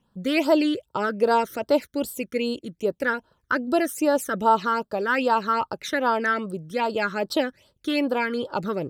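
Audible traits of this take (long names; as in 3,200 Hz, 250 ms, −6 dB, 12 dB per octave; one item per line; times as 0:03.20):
phaser sweep stages 12, 2.5 Hz, lowest notch 790–2,300 Hz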